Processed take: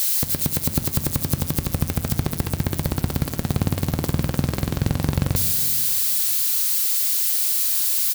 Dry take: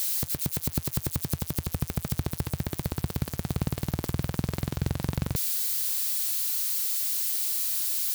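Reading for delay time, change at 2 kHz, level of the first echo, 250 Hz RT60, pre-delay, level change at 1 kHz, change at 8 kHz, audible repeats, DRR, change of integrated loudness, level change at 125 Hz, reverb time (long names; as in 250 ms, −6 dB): 65 ms, +7.5 dB, −15.5 dB, 2.4 s, 4 ms, +7.5 dB, +7.5 dB, 1, 8.0 dB, +7.5 dB, +7.0 dB, 1.9 s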